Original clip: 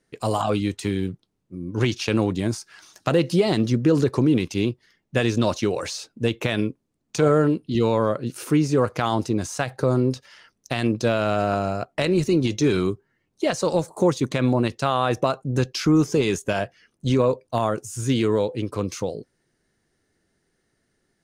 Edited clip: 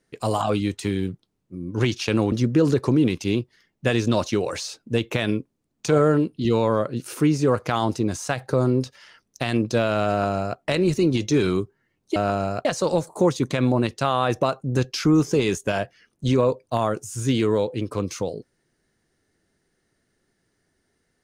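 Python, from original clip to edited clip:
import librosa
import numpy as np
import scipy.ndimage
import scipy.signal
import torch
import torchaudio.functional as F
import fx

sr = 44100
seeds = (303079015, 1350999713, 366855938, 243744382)

y = fx.edit(x, sr, fx.cut(start_s=2.32, length_s=1.3),
    fx.duplicate(start_s=11.4, length_s=0.49, to_s=13.46), tone=tone)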